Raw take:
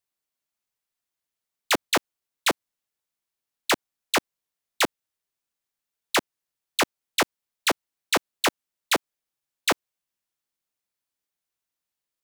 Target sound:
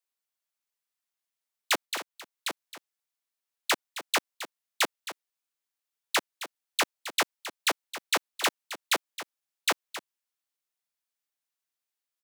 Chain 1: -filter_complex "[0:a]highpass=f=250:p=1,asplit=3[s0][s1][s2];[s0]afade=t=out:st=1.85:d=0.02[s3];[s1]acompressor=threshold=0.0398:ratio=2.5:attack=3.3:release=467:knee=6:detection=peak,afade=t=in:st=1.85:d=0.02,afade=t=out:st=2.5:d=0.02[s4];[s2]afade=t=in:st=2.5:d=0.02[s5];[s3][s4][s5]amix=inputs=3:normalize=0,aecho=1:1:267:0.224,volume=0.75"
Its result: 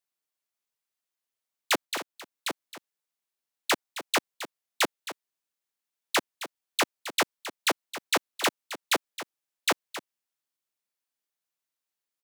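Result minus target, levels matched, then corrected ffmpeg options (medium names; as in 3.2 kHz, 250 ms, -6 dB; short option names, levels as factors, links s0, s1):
250 Hz band +4.5 dB
-filter_complex "[0:a]highpass=f=640:p=1,asplit=3[s0][s1][s2];[s0]afade=t=out:st=1.85:d=0.02[s3];[s1]acompressor=threshold=0.0398:ratio=2.5:attack=3.3:release=467:knee=6:detection=peak,afade=t=in:st=1.85:d=0.02,afade=t=out:st=2.5:d=0.02[s4];[s2]afade=t=in:st=2.5:d=0.02[s5];[s3][s4][s5]amix=inputs=3:normalize=0,aecho=1:1:267:0.224,volume=0.75"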